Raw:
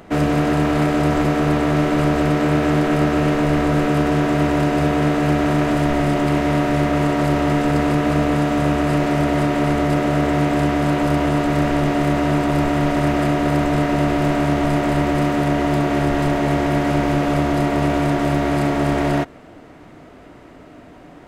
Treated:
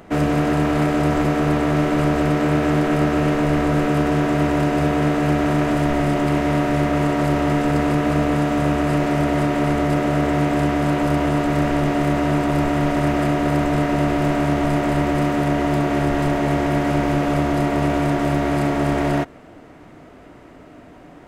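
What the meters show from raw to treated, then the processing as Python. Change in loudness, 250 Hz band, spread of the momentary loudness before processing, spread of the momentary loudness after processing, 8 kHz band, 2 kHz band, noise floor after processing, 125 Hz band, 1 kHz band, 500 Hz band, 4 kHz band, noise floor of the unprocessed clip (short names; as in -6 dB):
-1.0 dB, -1.0 dB, 1 LU, 1 LU, -1.5 dB, -1.0 dB, -44 dBFS, -1.0 dB, -1.0 dB, -1.0 dB, -2.0 dB, -43 dBFS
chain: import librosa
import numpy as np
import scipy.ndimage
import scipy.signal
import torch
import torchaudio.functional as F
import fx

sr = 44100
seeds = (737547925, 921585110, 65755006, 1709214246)

y = fx.peak_eq(x, sr, hz=4000.0, db=-2.0, octaves=0.77)
y = y * librosa.db_to_amplitude(-1.0)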